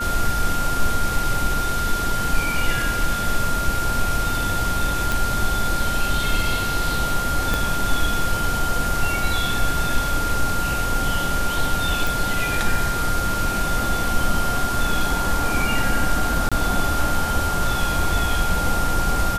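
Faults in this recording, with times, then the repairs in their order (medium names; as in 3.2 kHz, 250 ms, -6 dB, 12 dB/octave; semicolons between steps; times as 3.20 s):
whine 1.4 kHz -24 dBFS
5.12 s: pop
7.54 s: pop
12.07 s: pop
16.49–16.52 s: dropout 26 ms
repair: de-click; band-stop 1.4 kHz, Q 30; interpolate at 16.49 s, 26 ms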